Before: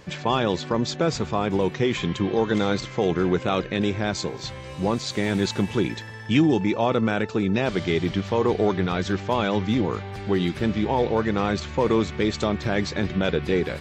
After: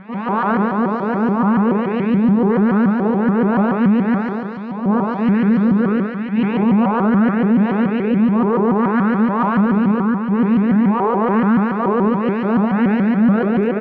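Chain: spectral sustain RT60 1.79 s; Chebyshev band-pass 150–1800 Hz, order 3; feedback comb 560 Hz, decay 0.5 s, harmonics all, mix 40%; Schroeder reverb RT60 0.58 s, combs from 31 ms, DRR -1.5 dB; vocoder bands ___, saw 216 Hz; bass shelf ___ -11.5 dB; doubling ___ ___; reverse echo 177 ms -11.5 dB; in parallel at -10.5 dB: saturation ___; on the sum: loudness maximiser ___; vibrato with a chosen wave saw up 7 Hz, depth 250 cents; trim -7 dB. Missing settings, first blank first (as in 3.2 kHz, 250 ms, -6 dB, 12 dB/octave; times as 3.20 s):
16, 380 Hz, 27 ms, -2.5 dB, -24.5 dBFS, +18 dB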